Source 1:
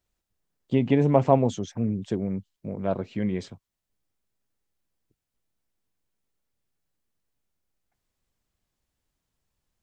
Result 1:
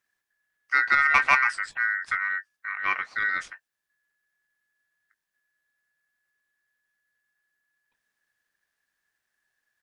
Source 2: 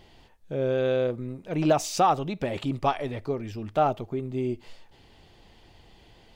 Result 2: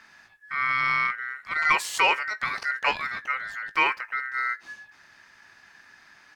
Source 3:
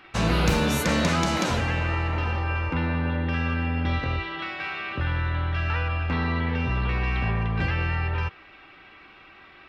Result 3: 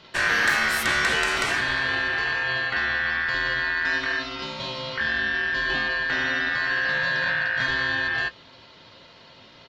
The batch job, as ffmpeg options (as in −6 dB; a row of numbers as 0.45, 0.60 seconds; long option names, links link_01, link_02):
-filter_complex "[0:a]aeval=exprs='val(0)*sin(2*PI*1700*n/s)':channel_layout=same,acontrast=81,asplit=2[link_01][link_02];[link_02]adelay=19,volume=-13.5dB[link_03];[link_01][link_03]amix=inputs=2:normalize=0,volume=-4dB"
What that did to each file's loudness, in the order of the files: +2.0, +2.0, +3.0 LU